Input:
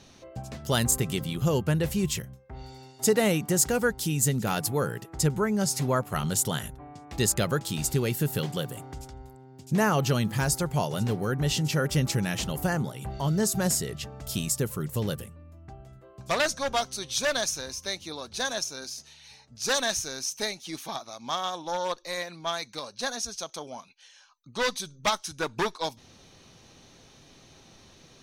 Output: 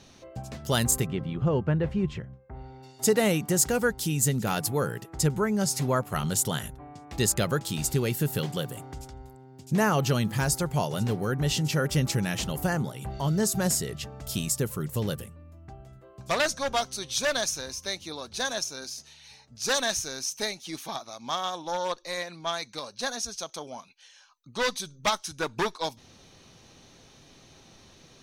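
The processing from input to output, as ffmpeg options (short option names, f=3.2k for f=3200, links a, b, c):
-filter_complex "[0:a]asplit=3[a][b][c];[a]afade=t=out:st=1.05:d=0.02[d];[b]lowpass=1.8k,afade=t=in:st=1.05:d=0.02,afade=t=out:st=2.82:d=0.02[e];[c]afade=t=in:st=2.82:d=0.02[f];[d][e][f]amix=inputs=3:normalize=0,asettb=1/sr,asplit=3[g][h][i];[g]atrim=end=21.904[j];[h]atrim=start=21.9:end=22.77,asetpts=PTS-STARTPTS,afade=t=in:d=0.004:c=qsin,afade=t=out:st=0.866:d=0.004:c=qsin,lowpass=12k[k];[i]atrim=start=22.766[l];[j][k]acrossfade=d=0.004:c1=hsin:c2=qsin[m];[m][l]acrossfade=d=0.004:c1=qsin:c2=hsin"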